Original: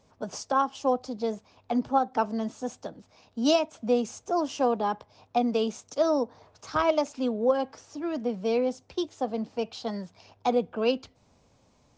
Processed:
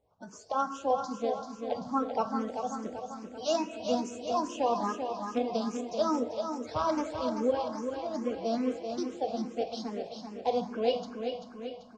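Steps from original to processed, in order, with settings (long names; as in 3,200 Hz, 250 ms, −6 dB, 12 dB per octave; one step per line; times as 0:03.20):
spectral magnitudes quantised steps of 30 dB
automatic gain control gain up to 7 dB
repeating echo 388 ms, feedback 55%, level −6.5 dB
convolution reverb RT60 1.6 s, pre-delay 8 ms, DRR 8 dB
frequency shifter mixed with the dry sound +2.4 Hz
level −8 dB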